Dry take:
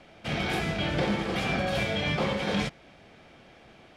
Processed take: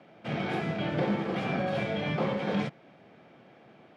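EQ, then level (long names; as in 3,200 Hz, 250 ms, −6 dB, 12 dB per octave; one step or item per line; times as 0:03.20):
high-pass filter 120 Hz 24 dB per octave
low-pass filter 1,300 Hz 6 dB per octave
0.0 dB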